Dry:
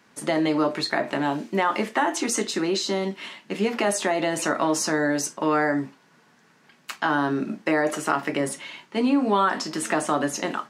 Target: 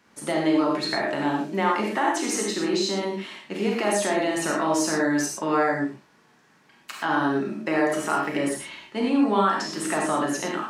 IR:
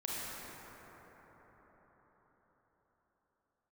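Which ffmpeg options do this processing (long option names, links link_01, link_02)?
-filter_complex "[0:a]equalizer=frequency=69:width_type=o:width=0.36:gain=15[link_01];[1:a]atrim=start_sample=2205,afade=type=out:start_time=0.17:duration=0.01,atrim=end_sample=7938[link_02];[link_01][link_02]afir=irnorm=-1:irlink=0"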